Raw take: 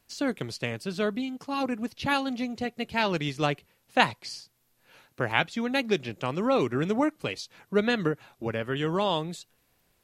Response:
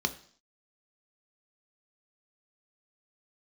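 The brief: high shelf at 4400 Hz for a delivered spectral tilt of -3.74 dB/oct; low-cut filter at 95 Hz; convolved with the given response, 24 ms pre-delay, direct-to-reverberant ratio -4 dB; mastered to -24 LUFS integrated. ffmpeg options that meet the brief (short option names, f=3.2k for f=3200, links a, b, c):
-filter_complex "[0:a]highpass=95,highshelf=f=4.4k:g=6,asplit=2[a][b];[1:a]atrim=start_sample=2205,adelay=24[c];[b][c]afir=irnorm=-1:irlink=0,volume=-3dB[d];[a][d]amix=inputs=2:normalize=0,volume=-1.5dB"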